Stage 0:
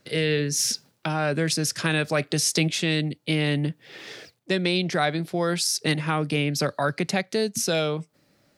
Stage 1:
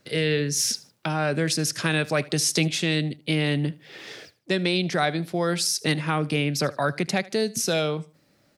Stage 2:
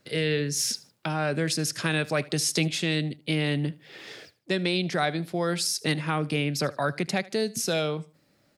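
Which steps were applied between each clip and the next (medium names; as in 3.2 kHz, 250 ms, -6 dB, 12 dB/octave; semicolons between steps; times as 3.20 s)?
feedback delay 77 ms, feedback 30%, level -21 dB
band-stop 5.9 kHz, Q 22; trim -2.5 dB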